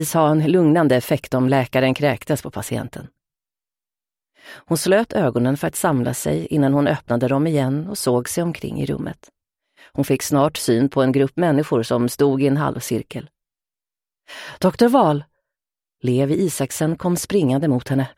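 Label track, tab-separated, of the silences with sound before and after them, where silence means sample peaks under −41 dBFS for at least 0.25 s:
3.070000	4.420000	silence
9.280000	9.790000	silence
13.270000	14.290000	silence
15.230000	16.030000	silence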